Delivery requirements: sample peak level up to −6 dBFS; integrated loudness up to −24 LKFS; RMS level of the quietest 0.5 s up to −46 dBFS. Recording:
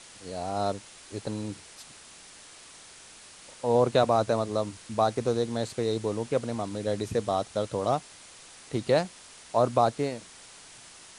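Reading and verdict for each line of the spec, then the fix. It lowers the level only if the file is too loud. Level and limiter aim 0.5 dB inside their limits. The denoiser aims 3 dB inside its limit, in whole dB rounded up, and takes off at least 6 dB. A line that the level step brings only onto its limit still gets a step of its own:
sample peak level −10.0 dBFS: in spec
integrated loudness −28.5 LKFS: in spec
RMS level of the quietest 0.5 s −50 dBFS: in spec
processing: no processing needed

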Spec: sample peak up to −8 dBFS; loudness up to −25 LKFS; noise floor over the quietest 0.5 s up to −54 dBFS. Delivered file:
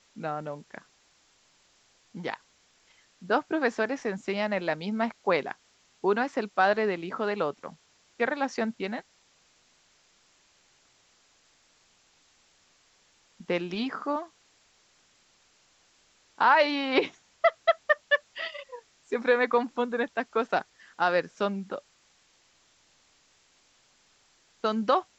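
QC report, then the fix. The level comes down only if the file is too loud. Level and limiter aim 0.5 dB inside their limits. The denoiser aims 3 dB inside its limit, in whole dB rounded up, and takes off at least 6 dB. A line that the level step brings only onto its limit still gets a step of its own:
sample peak −8.5 dBFS: in spec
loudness −28.5 LKFS: in spec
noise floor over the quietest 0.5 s −65 dBFS: in spec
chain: no processing needed

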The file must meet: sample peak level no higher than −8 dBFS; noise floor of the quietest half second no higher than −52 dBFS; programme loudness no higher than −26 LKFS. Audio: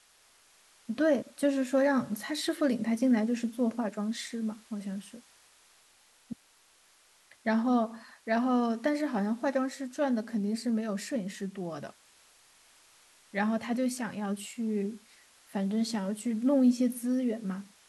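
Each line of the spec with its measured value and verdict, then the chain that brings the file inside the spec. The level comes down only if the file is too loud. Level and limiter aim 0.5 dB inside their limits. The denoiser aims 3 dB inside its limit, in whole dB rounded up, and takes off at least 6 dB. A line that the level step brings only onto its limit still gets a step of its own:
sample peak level −15.5 dBFS: in spec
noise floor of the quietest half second −63 dBFS: in spec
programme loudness −30.5 LKFS: in spec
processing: no processing needed

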